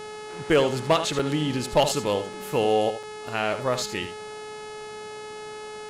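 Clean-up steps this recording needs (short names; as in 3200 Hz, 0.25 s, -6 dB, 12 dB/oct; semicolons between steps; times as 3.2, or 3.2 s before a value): clip repair -11.5 dBFS; de-hum 426.3 Hz, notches 25; interpolate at 1.19/1.89/2.33/3.03, 3.5 ms; inverse comb 78 ms -11 dB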